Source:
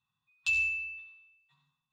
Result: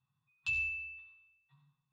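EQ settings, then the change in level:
low-pass filter 1,600 Hz 6 dB per octave
parametric band 130 Hz +11.5 dB 0.59 octaves
0.0 dB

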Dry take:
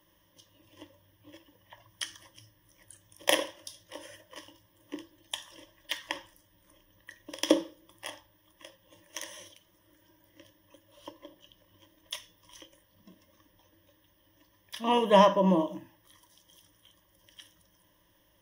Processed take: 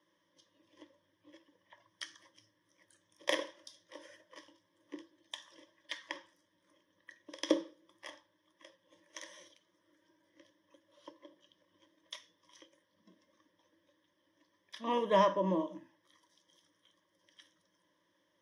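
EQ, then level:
band-pass filter 240–5,400 Hz
parametric band 760 Hz −9 dB 0.41 octaves
parametric band 2,800 Hz −10 dB 0.28 octaves
−4.5 dB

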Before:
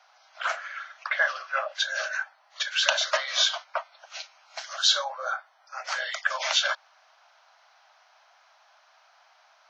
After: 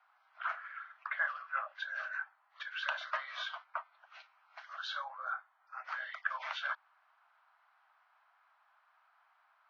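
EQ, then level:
four-pole ladder band-pass 1,400 Hz, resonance 35%
high-frequency loss of the air 110 metres
+1.5 dB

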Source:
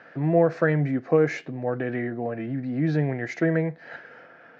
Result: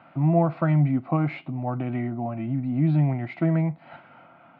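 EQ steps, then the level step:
low-pass filter 4,400 Hz
high-shelf EQ 2,200 Hz −10.5 dB
phaser with its sweep stopped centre 1,700 Hz, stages 6
+6.0 dB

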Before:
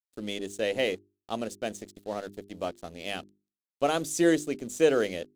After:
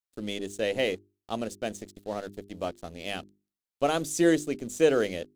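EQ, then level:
low-shelf EQ 110 Hz +6.5 dB
0.0 dB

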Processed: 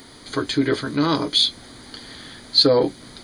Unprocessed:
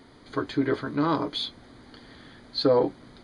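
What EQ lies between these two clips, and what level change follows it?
high-shelf EQ 2,600 Hz +8.5 dB
high-shelf EQ 5,700 Hz +10 dB
dynamic equaliser 960 Hz, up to −5 dB, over −37 dBFS, Q 0.85
+5.5 dB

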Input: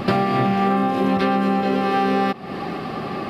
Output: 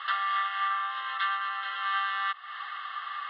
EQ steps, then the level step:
elliptic band-pass filter 1,200–3,500 Hz, stop band 70 dB
Butterworth band-reject 2,400 Hz, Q 3.6
0.0 dB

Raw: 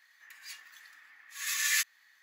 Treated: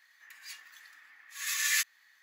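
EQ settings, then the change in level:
linear-phase brick-wall high-pass 190 Hz
0.0 dB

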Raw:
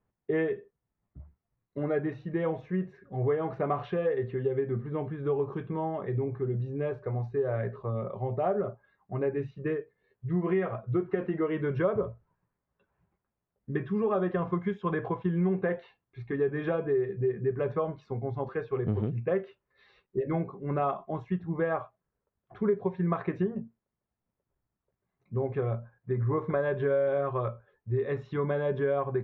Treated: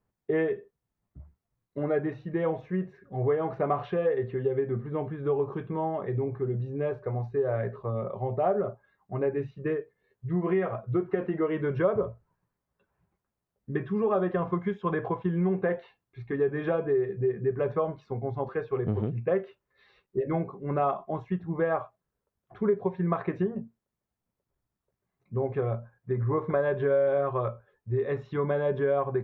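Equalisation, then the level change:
dynamic equaliser 700 Hz, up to +3 dB, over −41 dBFS, Q 0.83
0.0 dB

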